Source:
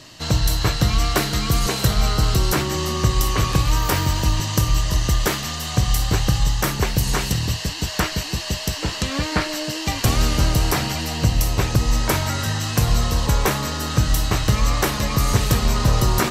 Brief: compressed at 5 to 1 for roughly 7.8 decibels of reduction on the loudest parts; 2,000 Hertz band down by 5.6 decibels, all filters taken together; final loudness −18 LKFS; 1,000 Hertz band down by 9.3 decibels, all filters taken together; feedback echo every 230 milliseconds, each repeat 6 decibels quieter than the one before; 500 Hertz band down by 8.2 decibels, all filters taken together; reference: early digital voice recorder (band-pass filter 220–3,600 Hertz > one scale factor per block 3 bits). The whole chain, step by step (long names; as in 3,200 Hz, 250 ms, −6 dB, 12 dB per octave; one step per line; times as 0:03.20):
parametric band 500 Hz −8.5 dB
parametric band 1,000 Hz −8.5 dB
parametric band 2,000 Hz −3.5 dB
downward compressor 5 to 1, threshold −22 dBFS
band-pass filter 220–3,600 Hz
repeating echo 230 ms, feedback 50%, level −6 dB
one scale factor per block 3 bits
level +14 dB